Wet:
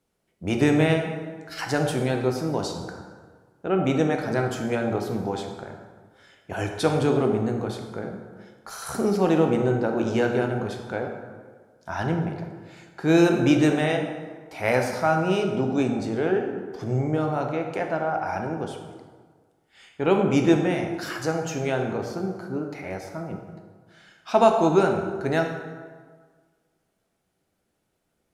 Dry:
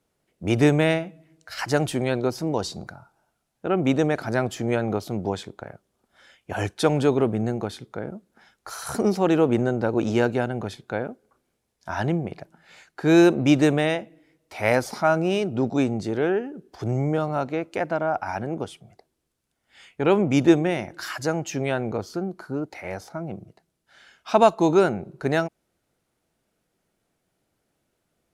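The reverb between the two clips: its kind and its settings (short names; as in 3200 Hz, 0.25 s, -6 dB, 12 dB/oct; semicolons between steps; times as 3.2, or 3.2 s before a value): plate-style reverb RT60 1.6 s, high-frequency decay 0.6×, DRR 2.5 dB; gain -2.5 dB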